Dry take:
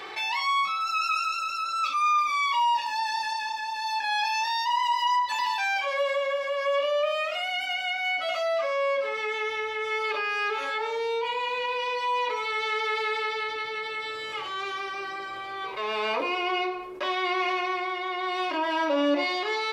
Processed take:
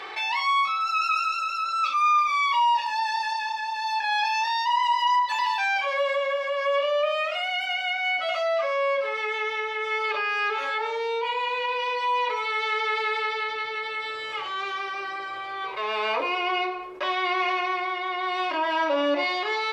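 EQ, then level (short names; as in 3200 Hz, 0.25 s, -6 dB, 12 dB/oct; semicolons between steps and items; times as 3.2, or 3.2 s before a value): low shelf 140 Hz -6.5 dB; bell 230 Hz -6.5 dB 1.7 oct; high shelf 5900 Hz -10.5 dB; +3.5 dB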